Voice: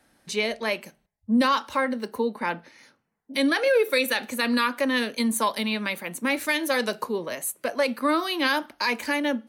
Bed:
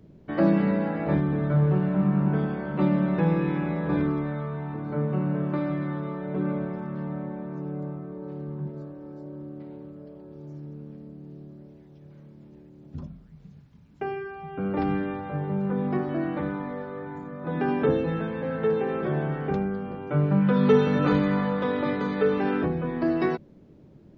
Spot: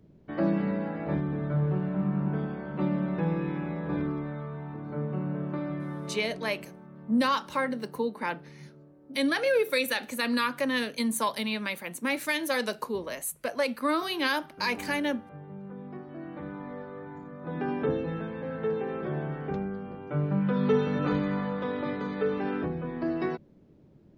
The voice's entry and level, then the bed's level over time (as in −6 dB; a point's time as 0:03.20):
5.80 s, −4.0 dB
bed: 0:06.12 −5.5 dB
0:06.41 −15 dB
0:16.06 −15 dB
0:16.74 −5.5 dB